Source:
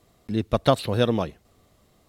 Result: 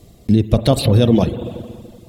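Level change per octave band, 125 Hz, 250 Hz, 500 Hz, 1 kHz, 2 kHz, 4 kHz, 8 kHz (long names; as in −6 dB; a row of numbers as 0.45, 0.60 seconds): +12.5, +11.0, +5.0, +0.5, +1.0, +6.0, +11.5 decibels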